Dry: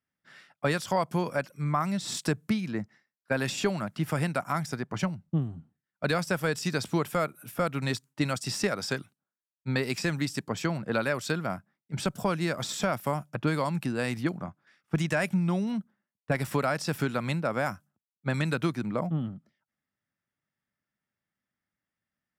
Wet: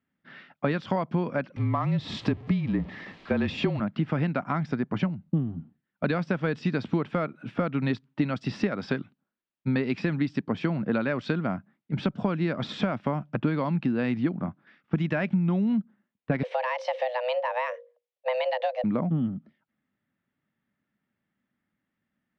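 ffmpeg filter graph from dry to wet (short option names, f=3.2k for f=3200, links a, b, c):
-filter_complex "[0:a]asettb=1/sr,asplit=3[a][b][c];[a]atrim=end=1.564[d];[b]atrim=start=1.56:end=3.8,asetpts=PTS-STARTPTS,afade=t=in:d=0.004:c=qsin,afade=t=out:st=2.236:d=0.004:c=qsin,aeval=exprs='val(0)+0.5*0.01*sgn(val(0))':c=same,bandreject=f=1.5k:w=6.6,afreqshift=-34[e];[c]atrim=start=3.796[f];[d][e]acrossfade=d=0.004:c1=hsin:c2=qsin[g];[g][f]acrossfade=d=0.004:c1=qsin:c2=hsin,asettb=1/sr,asplit=3[h][i][j];[h]atrim=end=16.434[k];[i]atrim=start=16.43:end=18.84,asetpts=PTS-STARTPTS,afade=t=in:d=0.004:c=qsin,afade=t=out:st=2.406:d=0.004:c=qsin,equalizer=f=1k:t=o:w=0.77:g=-11.5,bandreject=f=50:t=h:w=6,bandreject=f=100:t=h:w=6,bandreject=f=150:t=h:w=6,afreqshift=380[l];[j]atrim=start=18.836[m];[k][l]acrossfade=d=0.004:c1=hsin:c2=qsin[n];[n][m]acrossfade=d=0.004:c1=qsin:c2=hsin,lowpass=f=3.5k:w=0.5412,lowpass=f=3.5k:w=1.3066,equalizer=f=240:t=o:w=1.2:g=9,acompressor=threshold=-31dB:ratio=2.5,volume=5dB"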